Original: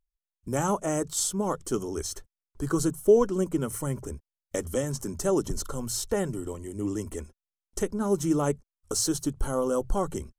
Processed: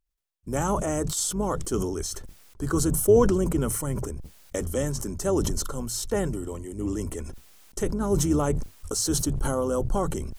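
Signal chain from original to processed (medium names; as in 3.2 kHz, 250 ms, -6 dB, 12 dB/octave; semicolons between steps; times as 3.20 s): octave divider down 2 oct, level -5 dB; decay stretcher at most 36 dB/s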